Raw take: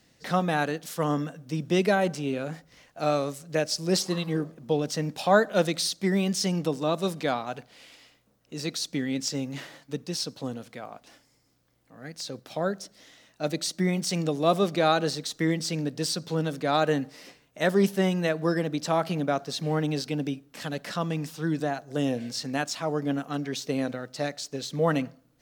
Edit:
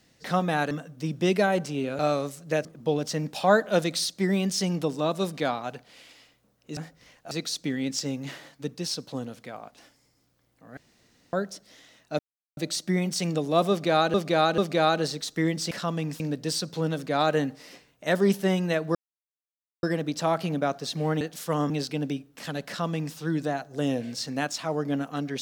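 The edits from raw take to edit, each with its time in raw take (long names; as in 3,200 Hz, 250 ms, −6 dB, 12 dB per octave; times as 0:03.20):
0:00.71–0:01.20: move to 0:19.87
0:02.48–0:03.02: move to 0:08.60
0:03.68–0:04.48: remove
0:12.06–0:12.62: fill with room tone
0:13.48: splice in silence 0.38 s
0:14.61–0:15.05: repeat, 3 plays
0:18.49: splice in silence 0.88 s
0:20.84–0:21.33: duplicate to 0:15.74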